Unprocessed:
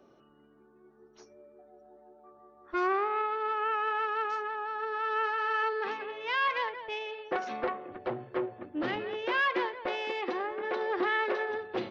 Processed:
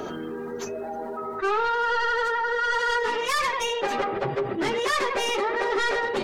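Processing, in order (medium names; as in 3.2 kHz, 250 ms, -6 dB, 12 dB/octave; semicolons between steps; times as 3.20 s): tracing distortion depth 0.13 ms; peaking EQ 560 Hz -4 dB 0.5 oct; plain phase-vocoder stretch 0.57×; on a send at -19 dB: reverberation, pre-delay 6 ms; on the sum: speed mistake 44.1 kHz file played as 48 kHz; level flattener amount 70%; trim +6.5 dB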